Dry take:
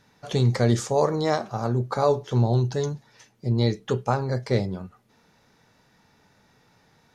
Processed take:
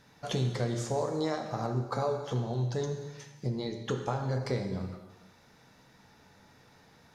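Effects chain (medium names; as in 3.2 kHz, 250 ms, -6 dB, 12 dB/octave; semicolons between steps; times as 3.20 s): compression 5:1, threshold -30 dBFS, peak gain reduction 13.5 dB; gated-style reverb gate 500 ms falling, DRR 4 dB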